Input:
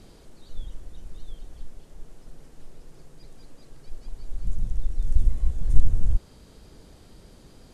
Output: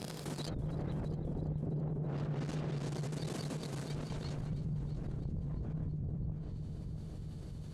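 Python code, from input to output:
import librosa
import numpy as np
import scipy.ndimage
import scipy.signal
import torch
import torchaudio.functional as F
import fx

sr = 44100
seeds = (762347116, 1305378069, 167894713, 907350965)

y = fx.doppler_pass(x, sr, speed_mps=18, closest_m=2.9, pass_at_s=1.59)
y = fx.leveller(y, sr, passes=3)
y = fx.peak_eq(y, sr, hz=150.0, db=14.5, octaves=0.32)
y = fx.env_lowpass_down(y, sr, base_hz=510.0, full_db=-29.5)
y = fx.rider(y, sr, range_db=4, speed_s=0.5)
y = scipy.signal.sosfilt(scipy.signal.butter(2, 110.0, 'highpass', fs=sr, output='sos'), y)
y = fx.echo_heads(y, sr, ms=330, heads='first and second', feedback_pct=51, wet_db=-17)
y = fx.env_flatten(y, sr, amount_pct=70)
y = F.gain(torch.from_numpy(y), 7.5).numpy()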